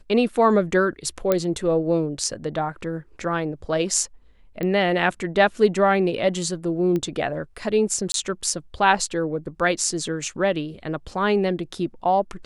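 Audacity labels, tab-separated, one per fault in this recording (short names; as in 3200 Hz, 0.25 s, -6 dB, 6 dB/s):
1.320000	1.320000	pop -7 dBFS
4.630000	4.630000	pop -15 dBFS
6.960000	6.960000	pop -15 dBFS
8.120000	8.140000	gap 22 ms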